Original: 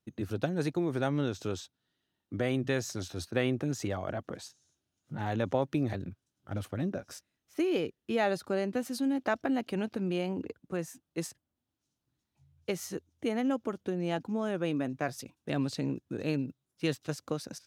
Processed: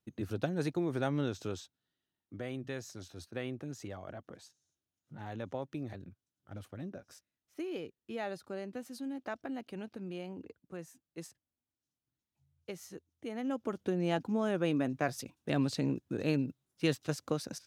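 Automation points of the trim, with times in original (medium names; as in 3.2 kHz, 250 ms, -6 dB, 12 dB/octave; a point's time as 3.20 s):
1.30 s -2.5 dB
2.41 s -10 dB
13.26 s -10 dB
13.81 s +0.5 dB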